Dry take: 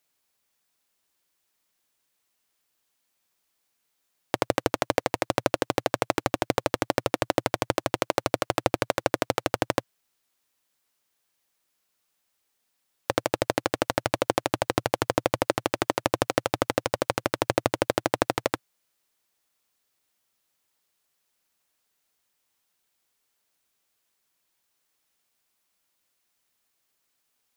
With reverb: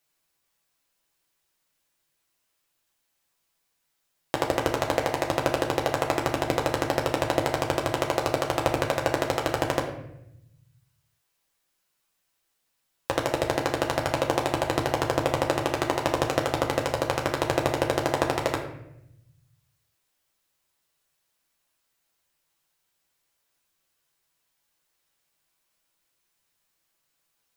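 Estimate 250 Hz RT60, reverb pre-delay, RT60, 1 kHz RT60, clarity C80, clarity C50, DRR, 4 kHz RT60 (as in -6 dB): 1.5 s, 6 ms, 0.80 s, 0.75 s, 9.5 dB, 7.0 dB, -0.5 dB, 0.55 s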